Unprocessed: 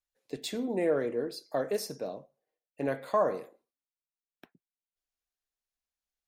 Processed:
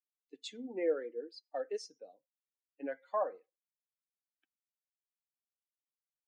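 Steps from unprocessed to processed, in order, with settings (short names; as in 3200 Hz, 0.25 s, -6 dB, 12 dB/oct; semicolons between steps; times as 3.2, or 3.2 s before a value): per-bin expansion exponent 2; elliptic band-pass 270–6900 Hz, stop band 40 dB; small resonant body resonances 500/770/2100/3500 Hz, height 7 dB; gain -5 dB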